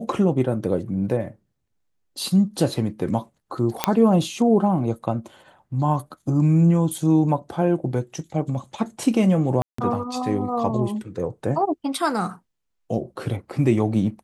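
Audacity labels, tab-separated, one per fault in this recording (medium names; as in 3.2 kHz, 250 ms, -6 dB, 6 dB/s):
3.840000	3.840000	pop -2 dBFS
9.620000	9.780000	dropout 164 ms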